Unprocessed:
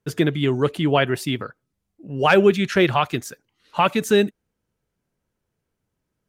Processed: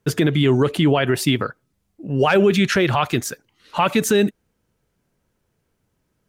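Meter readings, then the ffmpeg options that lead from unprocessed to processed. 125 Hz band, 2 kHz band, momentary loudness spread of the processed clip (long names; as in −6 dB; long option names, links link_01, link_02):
+4.5 dB, +0.5 dB, 10 LU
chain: -af "alimiter=level_in=14dB:limit=-1dB:release=50:level=0:latency=1,volume=-6.5dB"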